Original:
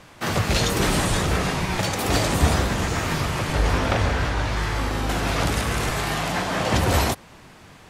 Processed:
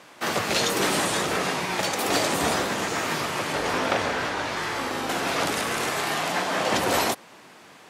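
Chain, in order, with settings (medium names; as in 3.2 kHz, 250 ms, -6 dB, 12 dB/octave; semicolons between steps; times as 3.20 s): high-pass 270 Hz 12 dB/octave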